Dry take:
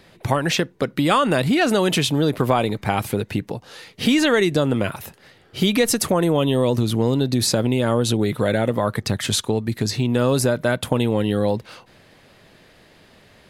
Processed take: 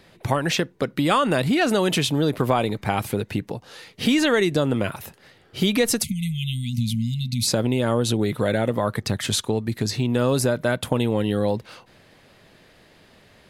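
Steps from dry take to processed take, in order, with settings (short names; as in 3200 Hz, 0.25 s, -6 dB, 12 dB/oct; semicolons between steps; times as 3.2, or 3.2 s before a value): spectral delete 6.03–7.47, 240–2000 Hz; gain -2 dB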